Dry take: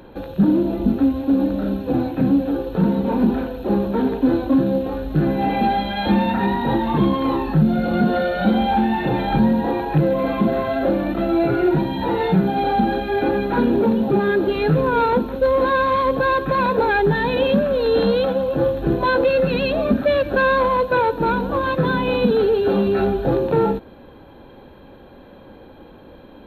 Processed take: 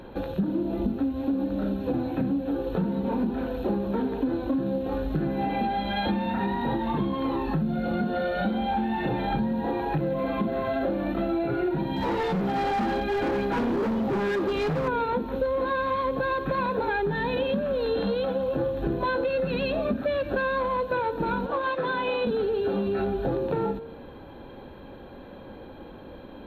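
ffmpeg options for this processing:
ffmpeg -i in.wav -filter_complex "[0:a]asettb=1/sr,asplit=3[link_01][link_02][link_03];[link_01]atrim=end=2.004[link_04];[link_02]atrim=start=2:end=2.87,asetpts=PTS-STARTPTS,afade=type=in:duration=0.004:curve=qsin,afade=type=out:start_time=0.866:duration=0.004:curve=qsin,bandreject=frequency=4800:width=13[link_05];[link_03]atrim=start=2.866[link_06];[link_04][link_05]acrossfade=duration=0.004:curve1=hsin:curve2=qsin[link_07];[link_07][link_06]acrossfade=duration=0.004:curve1=qsin:curve2=hsin,asettb=1/sr,asplit=3[link_08][link_09][link_10];[link_08]atrim=end=11.964[link_11];[link_09]atrim=start=11.96:end=14.88,asetpts=PTS-STARTPTS,afade=type=in:duration=0.004:curve=qsin,afade=type=out:start_time=2.916:duration=0.004:curve=qsin,asoftclip=type=hard:threshold=-19.5dB[link_12];[link_10]atrim=start=14.876[link_13];[link_11][link_12]acrossfade=duration=0.004:curve1=hsin:curve2=qsin[link_14];[link_14][link_13]acrossfade=duration=0.004:curve1=qsin:curve2=hsin,asettb=1/sr,asplit=3[link_15][link_16][link_17];[link_15]atrim=end=21.464[link_18];[link_16]atrim=start=21.46:end=22.27,asetpts=PTS-STARTPTS,afade=type=in:duration=0.004:curve=qsin,afade=type=out:start_time=0.806:duration=0.004:curve=qsin,acrossover=split=360 6100:gain=0.158 1 0.224[link_19][link_20][link_21];[link_19][link_20][link_21]amix=inputs=3:normalize=0[link_22];[link_17]atrim=start=22.266[link_23];[link_18][link_22]acrossfade=duration=0.004:curve1=hsin:curve2=qsin[link_24];[link_24][link_23]acrossfade=duration=0.004:curve1=qsin:curve2=hsin,highshelf=frequency=8900:gain=-5.5,bandreject=frequency=152.2:width_type=h:width=4,bandreject=frequency=304.4:width_type=h:width=4,bandreject=frequency=456.6:width_type=h:width=4,bandreject=frequency=608.8:width_type=h:width=4,bandreject=frequency=761:width_type=h:width=4,bandreject=frequency=913.2:width_type=h:width=4,bandreject=frequency=1065.4:width_type=h:width=4,bandreject=frequency=1217.6:width_type=h:width=4,bandreject=frequency=1369.8:width_type=h:width=4,bandreject=frequency=1522:width_type=h:width=4,bandreject=frequency=1674.2:width_type=h:width=4,bandreject=frequency=1826.4:width_type=h:width=4,bandreject=frequency=1978.6:width_type=h:width=4,bandreject=frequency=2130.8:width_type=h:width=4,bandreject=frequency=2283:width_type=h:width=4,bandreject=frequency=2435.2:width_type=h:width=4,bandreject=frequency=2587.4:width_type=h:width=4,bandreject=frequency=2739.6:width_type=h:width=4,bandreject=frequency=2891.8:width_type=h:width=4,bandreject=frequency=3044:width_type=h:width=4,bandreject=frequency=3196.2:width_type=h:width=4,bandreject=frequency=3348.4:width_type=h:width=4,bandreject=frequency=3500.6:width_type=h:width=4,bandreject=frequency=3652.8:width_type=h:width=4,bandreject=frequency=3805:width_type=h:width=4,bandreject=frequency=3957.2:width_type=h:width=4,bandreject=frequency=4109.4:width_type=h:width=4,bandreject=frequency=4261.6:width_type=h:width=4,acompressor=threshold=-24dB:ratio=6" out.wav

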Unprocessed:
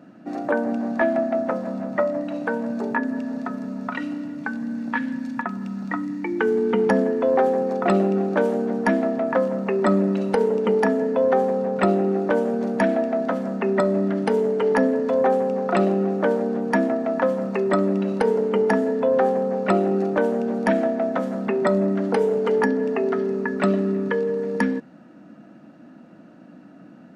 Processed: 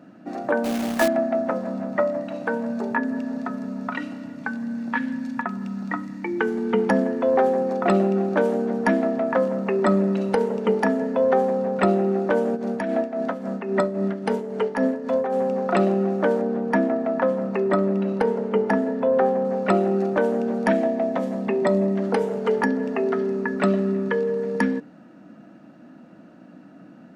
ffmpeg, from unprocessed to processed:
ffmpeg -i in.wav -filter_complex "[0:a]asettb=1/sr,asplit=3[link_01][link_02][link_03];[link_01]atrim=end=0.644[link_04];[link_02]atrim=start=0.64:end=1.08,asetpts=PTS-STARTPTS,afade=type=in:duration=0.004:curve=qsin,afade=type=out:start_time=0.436:duration=0.004:curve=qsin,acrusher=bits=2:mode=log:mix=0:aa=0.000001[link_05];[link_03]atrim=start=1.076[link_06];[link_04][link_05]acrossfade=duration=0.004:curve1=hsin:curve2=qsin[link_07];[link_07][link_06]acrossfade=duration=0.004:curve1=qsin:curve2=hsin,asplit=3[link_08][link_09][link_10];[link_08]afade=type=out:start_time=12.55:duration=0.02[link_11];[link_09]tremolo=f=3.7:d=0.63,afade=type=in:start_time=12.55:duration=0.02,afade=type=out:start_time=15.42:duration=0.02[link_12];[link_10]afade=type=in:start_time=15.42:duration=0.02[link_13];[link_11][link_12][link_13]amix=inputs=3:normalize=0,asettb=1/sr,asplit=3[link_14][link_15][link_16];[link_14]atrim=end=16.414[link_17];[link_15]atrim=start=16.41:end=19.45,asetpts=PTS-STARTPTS,afade=type=in:duration=0.004:curve=qsin,afade=type=out:start_time=3.036:duration=0.004:curve=qsin,highshelf=frequency=4000:gain=-9[link_18];[link_16]atrim=start=19.446[link_19];[link_17][link_18]acrossfade=duration=0.004:curve1=hsin:curve2=qsin[link_20];[link_20][link_19]acrossfade=duration=0.004:curve1=qsin:curve2=hsin,asettb=1/sr,asplit=3[link_21][link_22][link_23];[link_21]atrim=end=20.764[link_24];[link_22]atrim=start=20.76:end=22.02,asetpts=PTS-STARTPTS,afade=type=in:duration=0.004:curve=qsin,afade=type=out:start_time=1.256:duration=0.004:curve=qsin,equalizer=frequency=1400:width=5.3:gain=-11.5[link_25];[link_23]atrim=start=22.016[link_26];[link_24][link_25]acrossfade=duration=0.004:curve1=hsin:curve2=qsin[link_27];[link_27][link_26]acrossfade=duration=0.004:curve1=qsin:curve2=hsin,bandreject=frequency=73.02:width_type=h:width=4,bandreject=frequency=146.04:width_type=h:width=4,bandreject=frequency=219.06:width_type=h:width=4,bandreject=frequency=292.08:width_type=h:width=4,bandreject=frequency=365.1:width_type=h:width=4,bandreject=frequency=438.12:width_type=h:width=4,bandreject=frequency=511.14:width_type=h:width=4" out.wav

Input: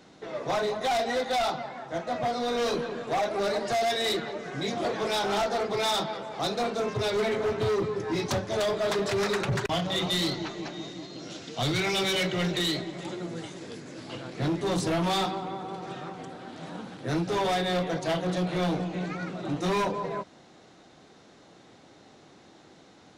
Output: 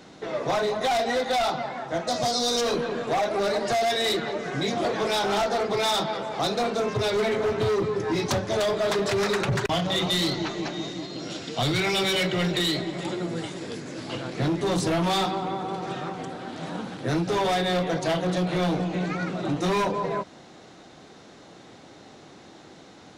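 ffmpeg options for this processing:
ffmpeg -i in.wav -filter_complex "[0:a]asplit=3[link_01][link_02][link_03];[link_01]afade=type=out:start_time=2.07:duration=0.02[link_04];[link_02]highshelf=frequency=3400:width_type=q:width=1.5:gain=13.5,afade=type=in:start_time=2.07:duration=0.02,afade=type=out:start_time=2.6:duration=0.02[link_05];[link_03]afade=type=in:start_time=2.6:duration=0.02[link_06];[link_04][link_05][link_06]amix=inputs=3:normalize=0,asettb=1/sr,asplit=3[link_07][link_08][link_09];[link_07]atrim=end=11.014[link_10];[link_08]atrim=start=11.01:end=13.72,asetpts=PTS-STARTPTS,afade=type=in:duration=0.004:curve=qsin,afade=type=out:start_time=2.706:duration=0.004:curve=qsin,bandreject=frequency=6200:width=12[link_11];[link_09]atrim=start=13.716[link_12];[link_10][link_11]acrossfade=duration=0.004:curve1=hsin:curve2=qsin[link_13];[link_13][link_12]acrossfade=duration=0.004:curve1=qsin:curve2=hsin,acompressor=threshold=-29dB:ratio=3,volume=6dB" out.wav

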